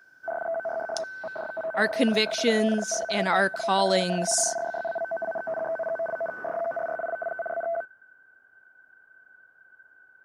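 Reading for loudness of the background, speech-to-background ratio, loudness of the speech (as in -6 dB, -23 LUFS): -31.5 LUFS, 6.5 dB, -25.0 LUFS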